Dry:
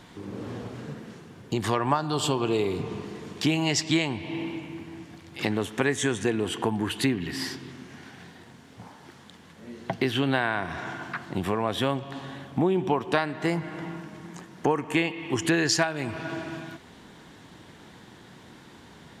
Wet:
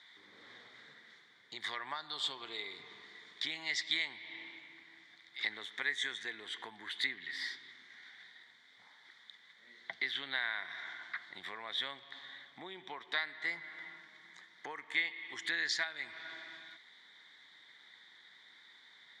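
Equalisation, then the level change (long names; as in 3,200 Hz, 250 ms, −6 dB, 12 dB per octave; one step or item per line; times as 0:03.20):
pair of resonant band-passes 2,700 Hz, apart 0.83 octaves
+1.5 dB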